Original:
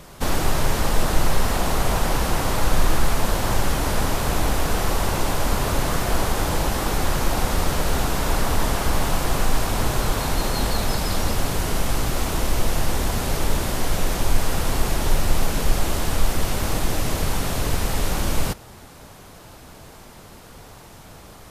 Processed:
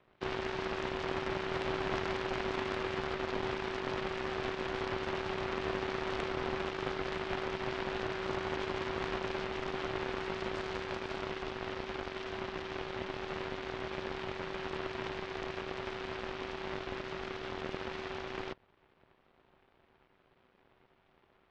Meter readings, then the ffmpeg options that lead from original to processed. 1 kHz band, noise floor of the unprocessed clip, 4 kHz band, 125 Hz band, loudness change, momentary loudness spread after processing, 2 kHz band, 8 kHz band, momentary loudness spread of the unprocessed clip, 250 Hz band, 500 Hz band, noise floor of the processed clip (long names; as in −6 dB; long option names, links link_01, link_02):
−12.5 dB, −44 dBFS, −14.0 dB, −20.5 dB, −13.5 dB, 5 LU, −9.5 dB, −30.0 dB, 21 LU, −12.5 dB, −8.0 dB, −69 dBFS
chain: -af "highpass=frequency=370:width_type=q:width=0.5412,highpass=frequency=370:width_type=q:width=1.307,lowpass=frequency=3300:width_type=q:width=0.5176,lowpass=frequency=3300:width_type=q:width=0.7071,lowpass=frequency=3300:width_type=q:width=1.932,afreqshift=-350,aeval=exprs='0.178*(cos(1*acos(clip(val(0)/0.178,-1,1)))-cos(1*PI/2))+0.0501*(cos(3*acos(clip(val(0)/0.178,-1,1)))-cos(3*PI/2))+0.0316*(cos(6*acos(clip(val(0)/0.178,-1,1)))-cos(6*PI/2))':channel_layout=same,aeval=exprs='val(0)*sin(2*PI*380*n/s)':channel_layout=same,volume=-3dB"